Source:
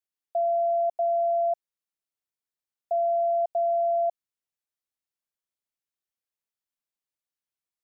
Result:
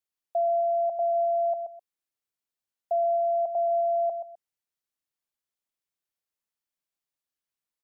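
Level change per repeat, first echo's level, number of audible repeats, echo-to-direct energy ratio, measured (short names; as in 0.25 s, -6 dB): -12.5 dB, -8.5 dB, 2, -8.5 dB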